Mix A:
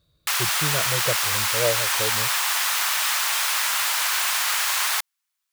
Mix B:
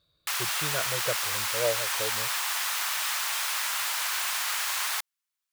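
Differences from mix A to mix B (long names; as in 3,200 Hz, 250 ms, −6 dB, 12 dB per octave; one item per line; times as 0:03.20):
speech: add low-shelf EQ 410 Hz −11 dB
background −6.5 dB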